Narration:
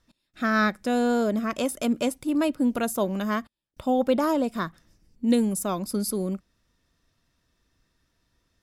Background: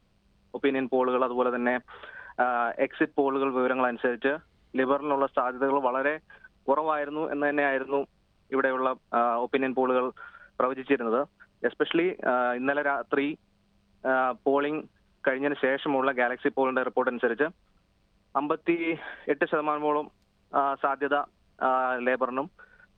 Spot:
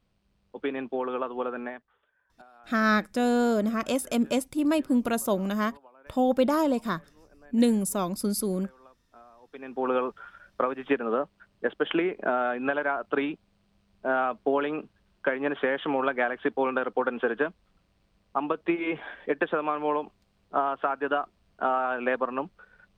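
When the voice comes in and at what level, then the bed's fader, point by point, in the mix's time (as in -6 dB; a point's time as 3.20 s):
2.30 s, -0.5 dB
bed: 1.58 s -5.5 dB
2.04 s -28.5 dB
9.38 s -28.5 dB
9.87 s -1 dB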